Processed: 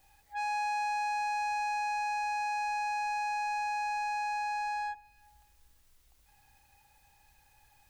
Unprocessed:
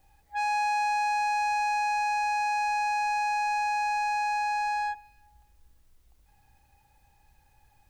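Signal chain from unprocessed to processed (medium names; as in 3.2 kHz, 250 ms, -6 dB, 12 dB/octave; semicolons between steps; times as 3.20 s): tape noise reduction on one side only encoder only; trim -5.5 dB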